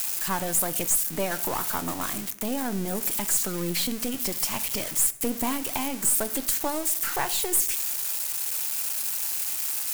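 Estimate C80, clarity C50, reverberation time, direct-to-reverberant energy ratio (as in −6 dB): 19.0 dB, 16.5 dB, 0.75 s, 12.0 dB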